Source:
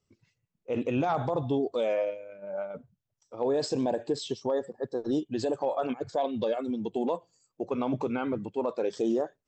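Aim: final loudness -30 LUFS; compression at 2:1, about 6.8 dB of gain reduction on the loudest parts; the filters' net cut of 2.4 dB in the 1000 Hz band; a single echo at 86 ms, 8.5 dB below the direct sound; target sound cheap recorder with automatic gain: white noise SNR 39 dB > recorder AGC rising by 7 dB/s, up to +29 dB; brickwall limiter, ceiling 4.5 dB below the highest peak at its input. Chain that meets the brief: bell 1000 Hz -3.5 dB; compressor 2:1, threshold -37 dBFS; limiter -28.5 dBFS; echo 86 ms -8.5 dB; white noise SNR 39 dB; recorder AGC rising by 7 dB/s, up to +29 dB; gain +8.5 dB

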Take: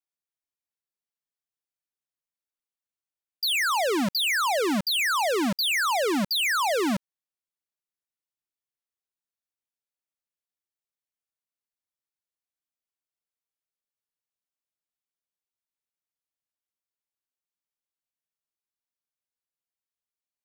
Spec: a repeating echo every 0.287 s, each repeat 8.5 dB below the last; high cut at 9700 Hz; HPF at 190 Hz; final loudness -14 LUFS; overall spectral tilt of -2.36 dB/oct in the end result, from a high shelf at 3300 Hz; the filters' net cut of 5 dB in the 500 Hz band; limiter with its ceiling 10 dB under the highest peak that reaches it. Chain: HPF 190 Hz; LPF 9700 Hz; bell 500 Hz -6.5 dB; high shelf 3300 Hz +3 dB; limiter -25.5 dBFS; feedback echo 0.287 s, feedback 38%, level -8.5 dB; gain +15.5 dB

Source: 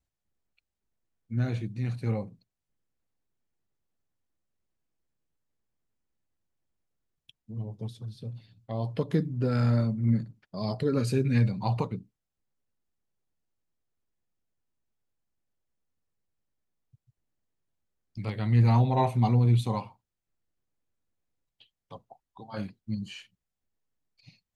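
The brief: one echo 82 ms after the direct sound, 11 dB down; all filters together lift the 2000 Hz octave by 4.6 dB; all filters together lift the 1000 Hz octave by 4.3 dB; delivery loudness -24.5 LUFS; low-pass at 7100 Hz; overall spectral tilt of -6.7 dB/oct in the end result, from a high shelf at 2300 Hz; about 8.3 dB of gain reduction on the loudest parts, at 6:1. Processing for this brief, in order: LPF 7100 Hz; bell 1000 Hz +5 dB; bell 2000 Hz +7.5 dB; high shelf 2300 Hz -6.5 dB; compressor 6:1, threshold -26 dBFS; echo 82 ms -11 dB; gain +8 dB

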